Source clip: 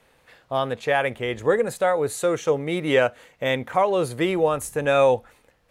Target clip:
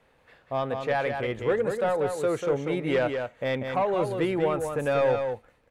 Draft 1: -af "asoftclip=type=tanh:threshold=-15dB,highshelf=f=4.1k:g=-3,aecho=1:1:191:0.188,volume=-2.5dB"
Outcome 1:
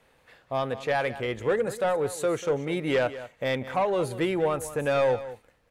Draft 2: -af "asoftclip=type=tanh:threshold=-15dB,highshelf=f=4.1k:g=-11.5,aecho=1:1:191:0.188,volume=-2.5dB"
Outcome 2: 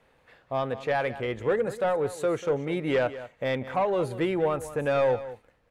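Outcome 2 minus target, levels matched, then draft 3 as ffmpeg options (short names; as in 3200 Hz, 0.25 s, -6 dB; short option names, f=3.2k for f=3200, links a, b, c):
echo-to-direct -8.5 dB
-af "asoftclip=type=tanh:threshold=-15dB,highshelf=f=4.1k:g=-11.5,aecho=1:1:191:0.501,volume=-2.5dB"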